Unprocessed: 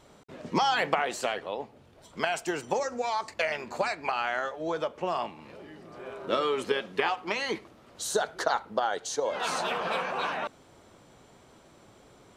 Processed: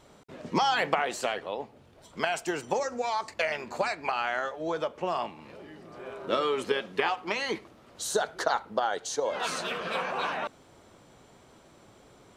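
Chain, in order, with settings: 9.47–9.95 s: peaking EQ 840 Hz -12 dB 0.61 oct

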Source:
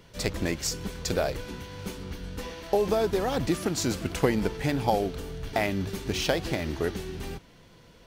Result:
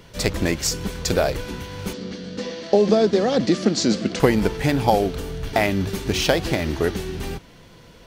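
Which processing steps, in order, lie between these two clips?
1.93–4.20 s: cabinet simulation 190–6700 Hz, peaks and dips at 210 Hz +10 dB, 530 Hz +4 dB, 930 Hz -9 dB, 1.4 kHz -4 dB, 2.5 kHz -4 dB, 4.5 kHz +4 dB; trim +7 dB

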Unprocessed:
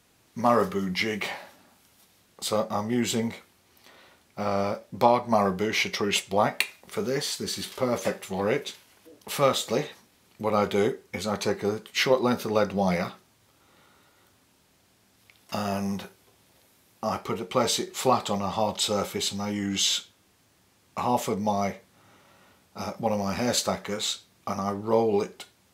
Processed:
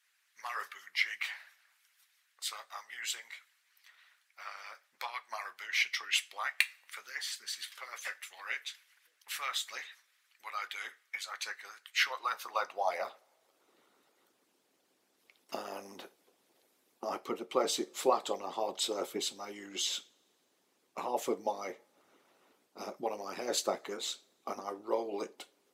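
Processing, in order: high-pass sweep 1.7 kHz -> 330 Hz, 11.86–13.79 s; harmonic-percussive split harmonic -17 dB; two-slope reverb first 0.31 s, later 1.9 s, from -22 dB, DRR 17 dB; trim -6.5 dB

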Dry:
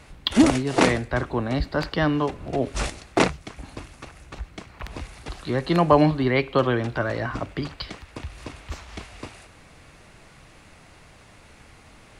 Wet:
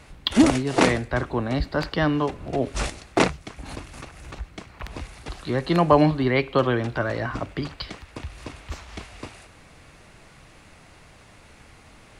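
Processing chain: 3.61–4.36 s: swell ahead of each attack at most 46 dB/s

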